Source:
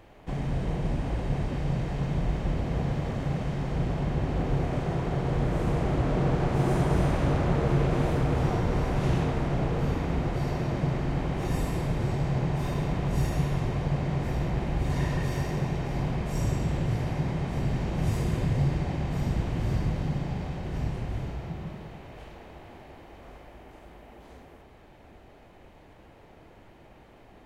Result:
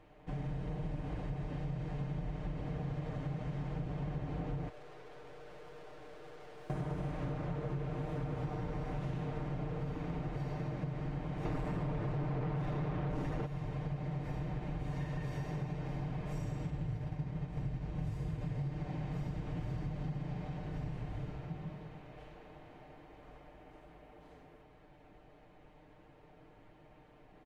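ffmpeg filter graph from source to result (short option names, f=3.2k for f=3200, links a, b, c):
-filter_complex "[0:a]asettb=1/sr,asplit=3[a][b][c];[a]atrim=end=4.694[d];[b]atrim=start=4.69:end=6.7,asetpts=PTS-STARTPTS,afade=t=in:d=0.004:c=qsin,afade=t=out:st=2.006:d=0.004:c=qsin,lowshelf=f=310:t=q:w=3:g=-10.5,aeval=exprs='(tanh(178*val(0)+0.7)-tanh(0.7))/178':c=same[e];[c]atrim=start=6.696[f];[d][e]acrossfade=d=0.004:c1=hsin:c2=qsin[g];[g][f]acrossfade=d=0.004:c1=qsin:c2=hsin,asettb=1/sr,asplit=3[h][i][j];[h]atrim=end=11.454[k];[i]atrim=start=11.45:end=13.46,asetpts=PTS-STARTPTS,afade=t=in:d=0.004:c=qsin,afade=t=out:st=2.006:d=0.004:c=qsin,lowpass=f=2.3k:p=1,aeval=exprs='0.188*sin(PI/2*3.55*val(0)/0.188)':c=same[l];[j]atrim=start=13.456[m];[k][l]acrossfade=d=0.004:c1=hsin:c2=qsin[n];[n][m]acrossfade=d=0.004:c1=qsin:c2=hsin,asettb=1/sr,asplit=3[o][p][q];[o]atrim=end=16.704[r];[p]atrim=start=16.7:end=18.41,asetpts=PTS-STARTPTS,afade=t=in:d=0.004:c=qsin,afade=t=out:st=1.706:d=0.004:c=qsin,agate=range=-33dB:threshold=-26dB:ratio=3:release=100:detection=peak,equalizer=f=63:w=0.8:g=9.5[s];[q]atrim=start=18.406[t];[r][s]acrossfade=d=0.004:c1=hsin:c2=qsin[u];[u][t]acrossfade=d=0.004:c1=qsin:c2=hsin,highshelf=f=5k:g=-9.5,aecho=1:1:6.6:0.65,acompressor=threshold=-26dB:ratio=6,volume=-8.5dB"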